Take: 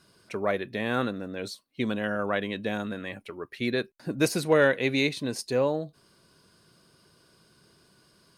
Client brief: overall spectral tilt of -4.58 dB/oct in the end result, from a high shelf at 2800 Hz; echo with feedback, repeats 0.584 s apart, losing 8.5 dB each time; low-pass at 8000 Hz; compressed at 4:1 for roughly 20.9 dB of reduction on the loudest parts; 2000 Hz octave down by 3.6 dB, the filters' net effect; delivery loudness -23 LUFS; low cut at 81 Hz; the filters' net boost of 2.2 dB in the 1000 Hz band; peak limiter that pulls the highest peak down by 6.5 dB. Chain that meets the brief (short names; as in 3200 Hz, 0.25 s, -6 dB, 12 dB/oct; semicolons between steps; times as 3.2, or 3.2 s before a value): HPF 81 Hz; LPF 8000 Hz; bell 1000 Hz +5 dB; bell 2000 Hz -8.5 dB; high shelf 2800 Hz +4.5 dB; compressor 4:1, threshold -42 dBFS; limiter -33.5 dBFS; feedback echo 0.584 s, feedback 38%, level -8.5 dB; gain +22.5 dB